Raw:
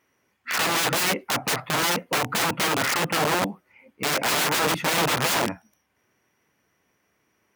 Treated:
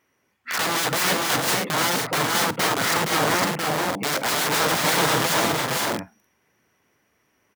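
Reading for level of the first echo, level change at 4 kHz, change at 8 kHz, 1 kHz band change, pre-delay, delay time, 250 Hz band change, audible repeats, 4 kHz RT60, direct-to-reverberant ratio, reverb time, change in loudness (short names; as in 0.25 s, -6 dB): -18.5 dB, +2.0 dB, +2.5 dB, +2.5 dB, none, 52 ms, +2.5 dB, 3, none, none, none, +1.5 dB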